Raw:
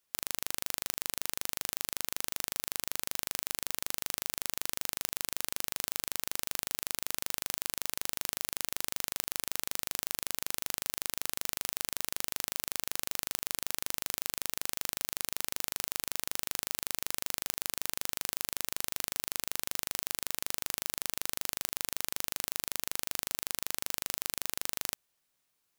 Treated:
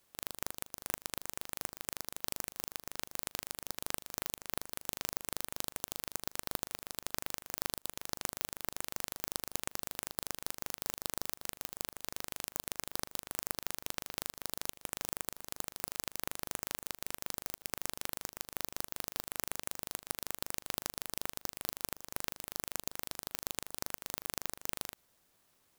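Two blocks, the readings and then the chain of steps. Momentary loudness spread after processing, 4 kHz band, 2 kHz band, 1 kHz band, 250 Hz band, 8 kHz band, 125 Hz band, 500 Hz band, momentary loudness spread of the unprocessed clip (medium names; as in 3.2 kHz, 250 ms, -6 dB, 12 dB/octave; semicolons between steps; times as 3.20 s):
3 LU, -6.0 dB, -5.0 dB, -1.5 dB, +0.5 dB, -6.0 dB, +0.5 dB, 0.0 dB, 0 LU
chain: treble shelf 4.3 kHz -5.5 dB; peak limiter -20.5 dBFS, peak gain reduction 12 dB; sampling jitter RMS 0.12 ms; trim +11.5 dB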